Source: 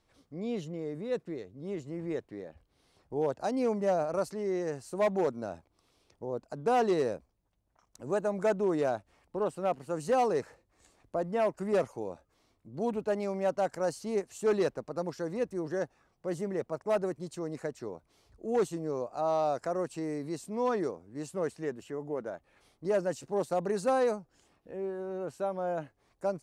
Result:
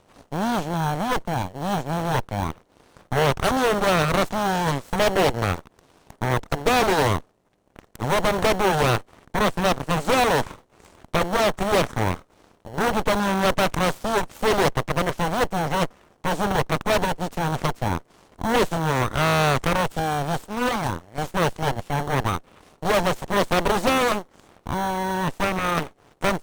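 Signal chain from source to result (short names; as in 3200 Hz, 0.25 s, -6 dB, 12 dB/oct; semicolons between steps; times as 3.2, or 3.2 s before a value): per-bin compression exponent 0.6; 20.45–21.18 low shelf 470 Hz -8.5 dB; added harmonics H 3 -22 dB, 7 -17 dB, 8 -7 dB, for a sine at -13.5 dBFS; in parallel at -6 dB: sample-and-hold 18×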